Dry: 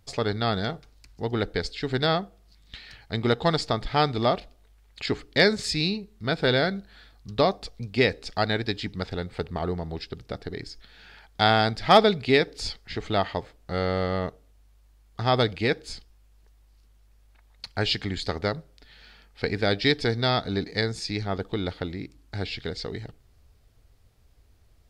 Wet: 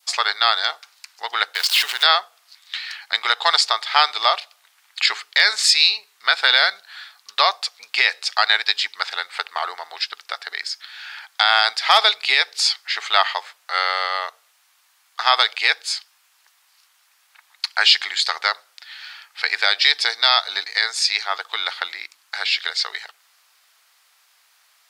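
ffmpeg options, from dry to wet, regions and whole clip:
-filter_complex "[0:a]asettb=1/sr,asplit=3[s0][s1][s2];[s0]atrim=end=1.554[s3];[s1]atrim=start=1.55:end=2.03,asetpts=PTS-STARTPTS,afade=t=in:d=0.004:c=qsin,afade=t=out:st=0.476:d=0.004:c=qsin,aeval=exprs='val(0)+0.5*0.0266*sgn(val(0))':c=same,equalizer=f=2900:t=o:w=0.35:g=7,acompressor=threshold=0.0501:ratio=6:attack=3.2:release=140:knee=1:detection=peak[s4];[s2]atrim=start=2.026[s5];[s3][s4]acrossfade=d=0.004:c1=hsin:c2=qsin[s6];[s6][s5]acrossfade=d=0.004:c1=qsin:c2=hsin,highpass=f=1000:w=0.5412,highpass=f=1000:w=1.3066,adynamicequalizer=threshold=0.00891:dfrequency=1600:dqfactor=1.1:tfrequency=1600:tqfactor=1.1:attack=5:release=100:ratio=0.375:range=3.5:mode=cutabove:tftype=bell,alimiter=level_in=6.31:limit=0.891:release=50:level=0:latency=1,volume=0.891"

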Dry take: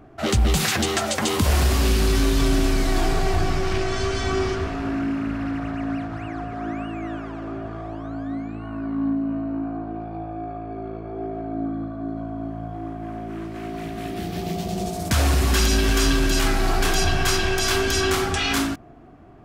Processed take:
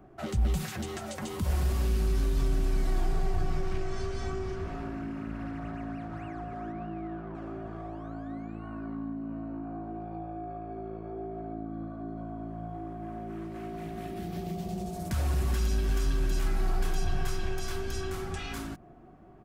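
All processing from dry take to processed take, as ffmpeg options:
-filter_complex "[0:a]asettb=1/sr,asplit=3[s0][s1][s2];[s0]atrim=end=6.724[s3];[s1]atrim=start=6.72:end=7.35,asetpts=PTS-STARTPTS,afade=t=in:d=0.004:c=qsin,afade=t=out:st=0.626:d=0.004:c=qsin,asplit=2[s4][s5];[s5]adelay=24,volume=0.562[s6];[s4][s6]amix=inputs=2:normalize=0,atrim=end_sample=27783,adynamicsmooth=sensitivity=1.5:basefreq=1400[s7];[s2]atrim=start=7.346[s8];[s3][s7]acrossfade=d=0.004:c1=hsin:c2=qsin[s9];[s9][s8]acrossfade=d=0.004:c1=qsin:c2=hsin,aecho=1:1:5.4:0.34,acrossover=split=150[s10][s11];[s11]acompressor=threshold=0.0355:ratio=5[s12];[s10][s12]amix=inputs=2:normalize=0,equalizer=f=3900:w=0.49:g=-5,volume=0.501"

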